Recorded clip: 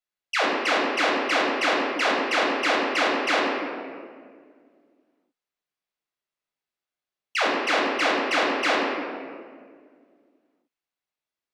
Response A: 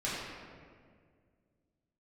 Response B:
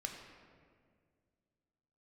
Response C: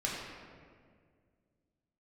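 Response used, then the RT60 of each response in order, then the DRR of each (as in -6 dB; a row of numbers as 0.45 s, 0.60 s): C; 2.0 s, 2.0 s, 2.0 s; -9.0 dB, 2.0 dB, -4.5 dB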